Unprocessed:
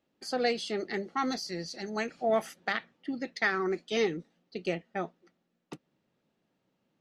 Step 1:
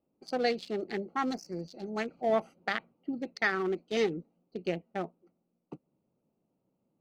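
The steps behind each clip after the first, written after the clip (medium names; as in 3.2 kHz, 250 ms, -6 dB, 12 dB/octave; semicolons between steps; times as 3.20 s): local Wiener filter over 25 samples; spectral replace 1.36–1.60 s, 2.4–5 kHz after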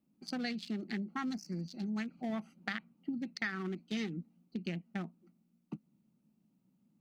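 FFT filter 100 Hz 0 dB, 210 Hz +12 dB, 470 Hz -10 dB, 1.7 kHz +4 dB; compression 3:1, threshold -35 dBFS, peak gain reduction 11.5 dB; trim -1.5 dB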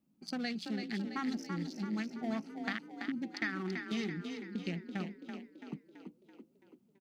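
frequency-shifting echo 333 ms, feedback 53%, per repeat +31 Hz, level -6.5 dB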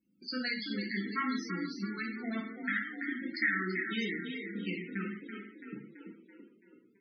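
FFT filter 210 Hz 0 dB, 400 Hz +4 dB, 760 Hz -6 dB, 1.4 kHz +9 dB; gated-style reverb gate 220 ms falling, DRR -2 dB; loudest bins only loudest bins 32; trim -4.5 dB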